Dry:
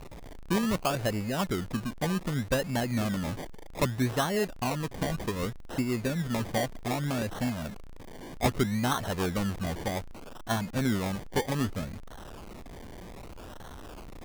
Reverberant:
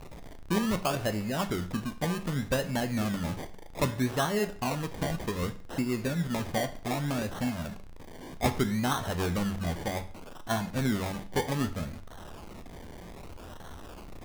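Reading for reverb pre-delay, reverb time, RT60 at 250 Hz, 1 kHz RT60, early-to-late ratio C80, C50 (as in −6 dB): 10 ms, 0.45 s, 0.45 s, 0.45 s, 18.5 dB, 14.5 dB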